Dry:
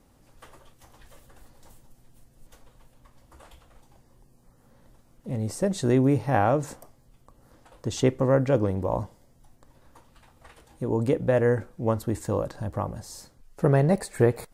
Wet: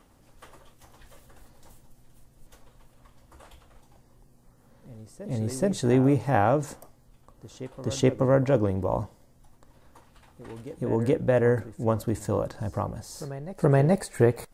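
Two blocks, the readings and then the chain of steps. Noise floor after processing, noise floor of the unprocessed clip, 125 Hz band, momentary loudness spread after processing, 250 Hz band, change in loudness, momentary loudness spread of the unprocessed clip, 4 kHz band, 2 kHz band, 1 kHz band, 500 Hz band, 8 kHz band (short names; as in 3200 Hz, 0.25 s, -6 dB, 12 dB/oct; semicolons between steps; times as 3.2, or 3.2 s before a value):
-59 dBFS, -60 dBFS, 0.0 dB, 17 LU, 0.0 dB, 0.0 dB, 13 LU, 0.0 dB, 0.0 dB, 0.0 dB, 0.0 dB, 0.0 dB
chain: reverse echo 0.425 s -16.5 dB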